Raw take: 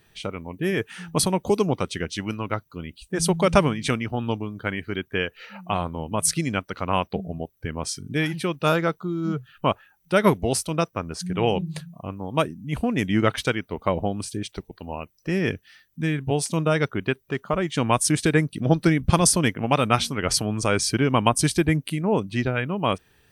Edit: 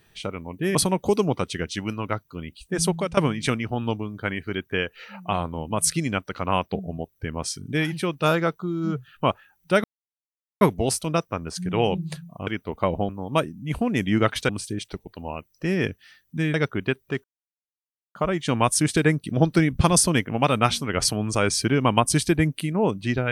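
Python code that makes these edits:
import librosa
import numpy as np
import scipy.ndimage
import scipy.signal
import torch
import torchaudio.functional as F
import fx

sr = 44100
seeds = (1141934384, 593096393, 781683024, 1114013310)

y = fx.edit(x, sr, fx.cut(start_s=0.75, length_s=0.41),
    fx.fade_out_to(start_s=3.24, length_s=0.34, floor_db=-18.0),
    fx.insert_silence(at_s=10.25, length_s=0.77),
    fx.move(start_s=13.51, length_s=0.62, to_s=12.11),
    fx.cut(start_s=16.18, length_s=0.56),
    fx.insert_silence(at_s=17.44, length_s=0.91), tone=tone)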